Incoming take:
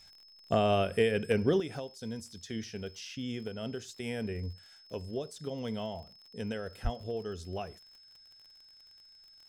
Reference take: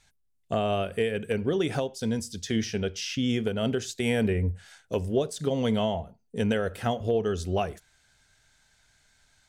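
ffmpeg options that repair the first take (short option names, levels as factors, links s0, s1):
-filter_complex "[0:a]adeclick=t=4,bandreject=f=5200:w=30,asplit=3[s0][s1][s2];[s0]afade=t=out:st=6.83:d=0.02[s3];[s1]highpass=f=140:w=0.5412,highpass=f=140:w=1.3066,afade=t=in:st=6.83:d=0.02,afade=t=out:st=6.95:d=0.02[s4];[s2]afade=t=in:st=6.95:d=0.02[s5];[s3][s4][s5]amix=inputs=3:normalize=0,asetnsamples=n=441:p=0,asendcmd='1.6 volume volume 11dB',volume=1"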